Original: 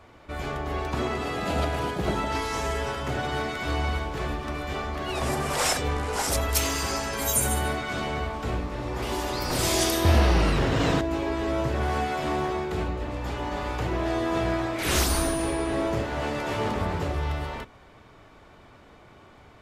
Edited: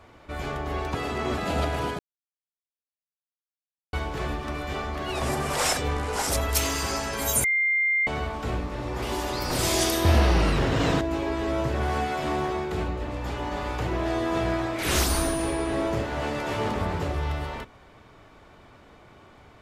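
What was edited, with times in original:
0.95–1.38 reverse
1.99–3.93 mute
7.44–8.07 bleep 2100 Hz -20 dBFS

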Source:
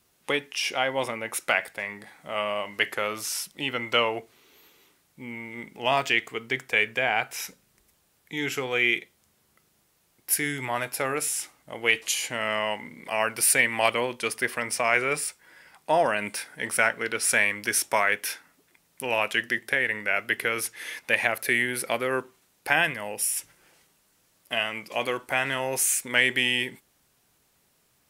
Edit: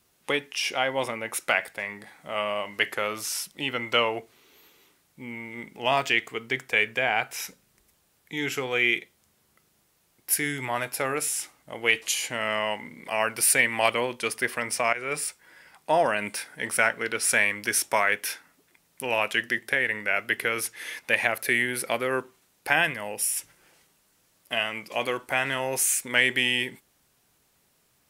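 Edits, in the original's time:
14.93–15.22 fade in, from -16.5 dB

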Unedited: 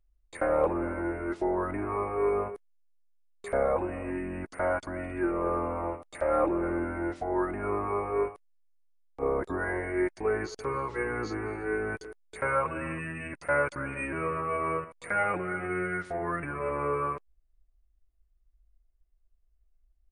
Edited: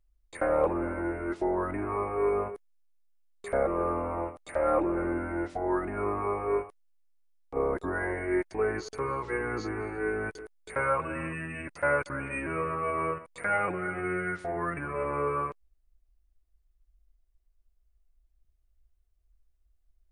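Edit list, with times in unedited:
3.67–5.33 cut

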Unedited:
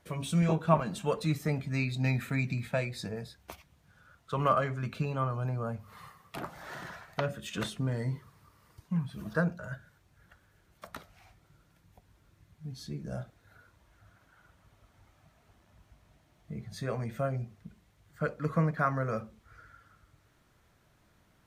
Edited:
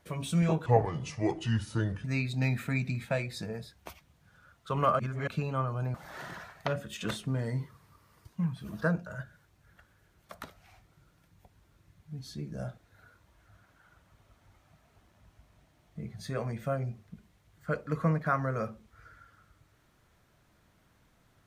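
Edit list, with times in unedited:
0.66–1.67 speed 73%
4.62–4.9 reverse
5.57–6.47 cut

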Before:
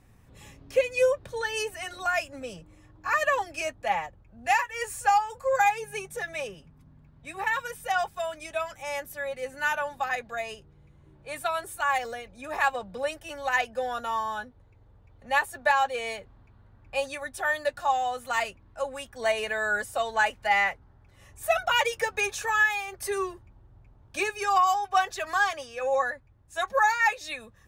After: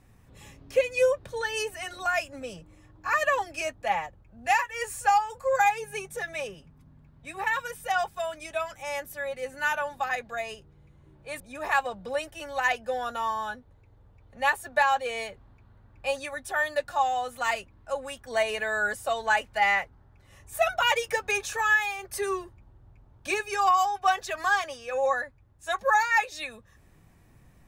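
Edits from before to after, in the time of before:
11.4–12.29 cut

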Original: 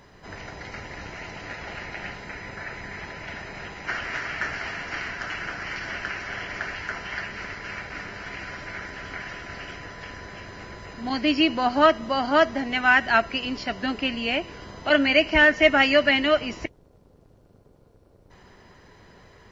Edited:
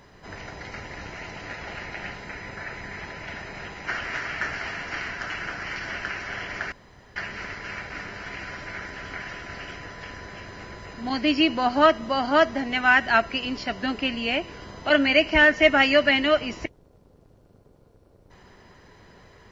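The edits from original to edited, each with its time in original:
6.72–7.16 room tone

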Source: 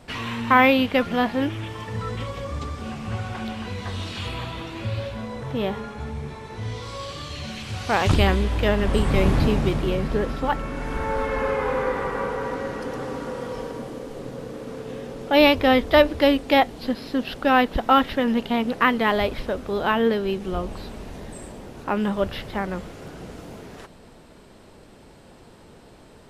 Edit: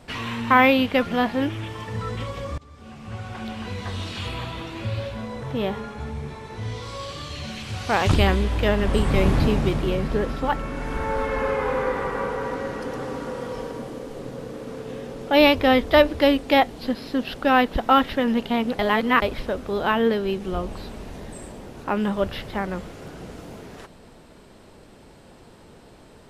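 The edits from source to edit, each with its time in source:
2.58–3.71 fade in, from -22 dB
18.79–19.22 reverse

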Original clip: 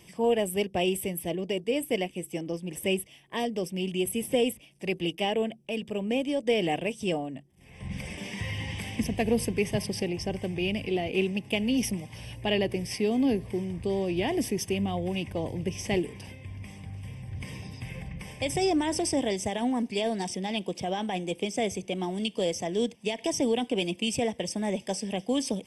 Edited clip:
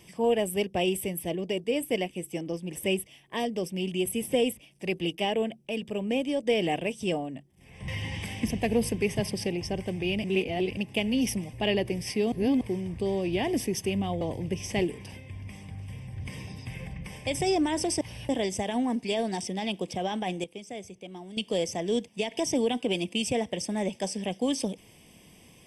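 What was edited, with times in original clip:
7.88–8.44 cut
10.8–11.33 reverse
12.09–12.37 move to 19.16
13.16–13.45 reverse
15.05–15.36 cut
21.31–22.24 gain -11 dB

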